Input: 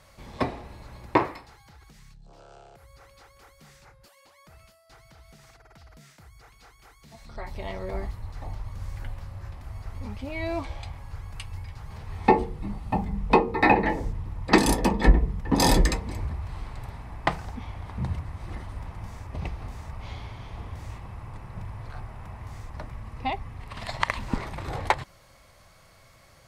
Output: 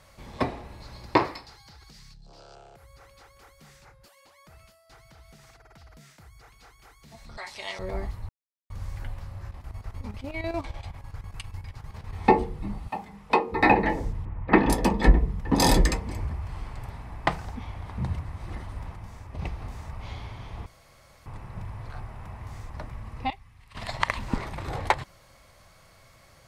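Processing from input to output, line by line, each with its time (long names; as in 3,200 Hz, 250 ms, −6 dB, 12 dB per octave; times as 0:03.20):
0:00.80–0:02.55: parametric band 4,700 Hz +11 dB 0.7 octaves
0:07.37–0:07.79: meter weighting curve ITU-R 468
0:08.29–0:08.70: silence
0:09.44–0:12.13: square-wave tremolo 10 Hz, depth 65%, duty 70%
0:12.87–0:13.51: high-pass filter 1,200 Hz → 510 Hz 6 dB per octave
0:14.25–0:14.70: low-pass filter 2,500 Hz 24 dB per octave
0:15.88–0:16.90: notch filter 3,900 Hz
0:18.96–0:19.39: clip gain −3.5 dB
0:20.66–0:21.26: fill with room tone
0:23.30–0:23.75: guitar amp tone stack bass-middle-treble 5-5-5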